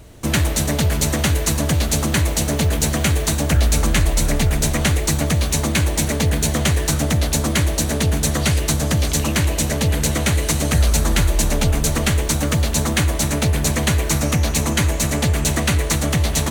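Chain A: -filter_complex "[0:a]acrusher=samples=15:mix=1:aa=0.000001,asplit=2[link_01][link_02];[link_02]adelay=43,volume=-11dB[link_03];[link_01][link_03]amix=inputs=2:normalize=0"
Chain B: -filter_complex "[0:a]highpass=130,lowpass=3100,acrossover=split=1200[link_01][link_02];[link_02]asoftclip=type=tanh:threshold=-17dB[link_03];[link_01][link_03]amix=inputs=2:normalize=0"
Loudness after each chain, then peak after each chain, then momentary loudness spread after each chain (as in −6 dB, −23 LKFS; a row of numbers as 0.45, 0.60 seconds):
−19.0, −23.0 LKFS; −5.5, −8.0 dBFS; 2, 1 LU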